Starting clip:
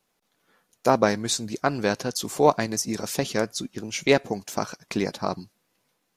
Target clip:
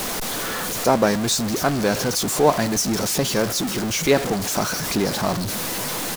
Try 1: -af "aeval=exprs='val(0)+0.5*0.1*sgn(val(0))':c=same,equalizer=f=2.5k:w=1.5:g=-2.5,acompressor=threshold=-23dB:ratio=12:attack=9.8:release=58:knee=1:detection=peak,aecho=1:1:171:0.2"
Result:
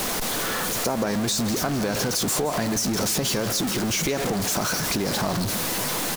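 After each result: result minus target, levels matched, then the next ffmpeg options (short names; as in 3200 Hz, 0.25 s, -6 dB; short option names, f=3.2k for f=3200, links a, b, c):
compressor: peak gain reduction +12 dB; echo-to-direct +12 dB
-af "aeval=exprs='val(0)+0.5*0.1*sgn(val(0))':c=same,equalizer=f=2.5k:w=1.5:g=-2.5,aecho=1:1:171:0.2"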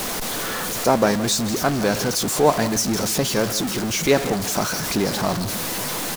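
echo-to-direct +12 dB
-af "aeval=exprs='val(0)+0.5*0.1*sgn(val(0))':c=same,equalizer=f=2.5k:w=1.5:g=-2.5,aecho=1:1:171:0.0501"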